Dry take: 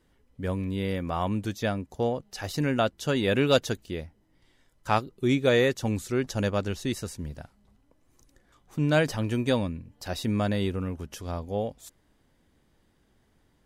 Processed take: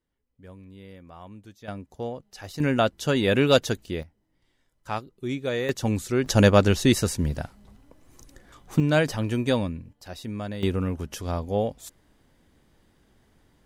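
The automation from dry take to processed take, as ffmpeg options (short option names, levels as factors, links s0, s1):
-af "asetnsamples=n=441:p=0,asendcmd='1.68 volume volume -5.5dB;2.6 volume volume 3dB;4.03 volume volume -6dB;5.69 volume volume 3dB;6.26 volume volume 10.5dB;8.8 volume volume 1.5dB;9.93 volume volume -6.5dB;10.63 volume volume 4.5dB',volume=0.158"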